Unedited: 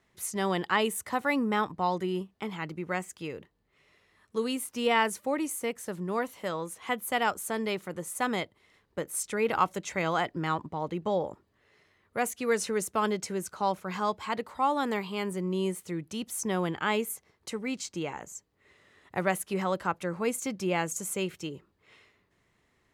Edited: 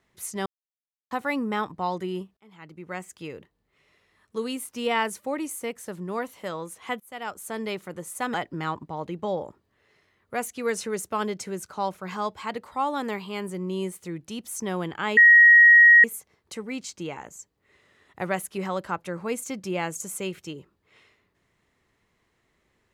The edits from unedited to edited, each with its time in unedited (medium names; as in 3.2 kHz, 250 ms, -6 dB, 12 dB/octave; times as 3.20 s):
0.46–1.11 s: mute
2.37–3.19 s: fade in
7.00–7.62 s: fade in, from -22 dB
8.34–10.17 s: delete
17.00 s: add tone 1.89 kHz -9.5 dBFS 0.87 s